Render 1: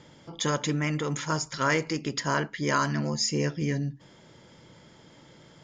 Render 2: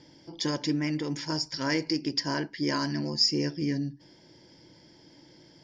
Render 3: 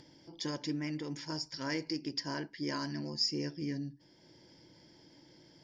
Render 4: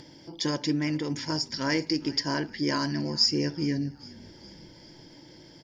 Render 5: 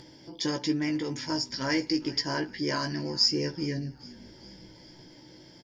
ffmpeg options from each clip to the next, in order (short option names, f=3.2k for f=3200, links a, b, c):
-af "superequalizer=6b=2.51:10b=0.355:14b=3.55:15b=0.631,volume=-5dB"
-af "acompressor=mode=upward:threshold=-45dB:ratio=2.5,volume=-8dB"
-filter_complex "[0:a]asplit=5[a][b][c][d][e];[b]adelay=410,afreqshift=-45,volume=-21.5dB[f];[c]adelay=820,afreqshift=-90,volume=-26.7dB[g];[d]adelay=1230,afreqshift=-135,volume=-31.9dB[h];[e]adelay=1640,afreqshift=-180,volume=-37.1dB[i];[a][f][g][h][i]amix=inputs=5:normalize=0,volume=9dB"
-filter_complex "[0:a]asplit=2[a][b];[b]adelay=16,volume=-5.5dB[c];[a][c]amix=inputs=2:normalize=0,volume=-2dB"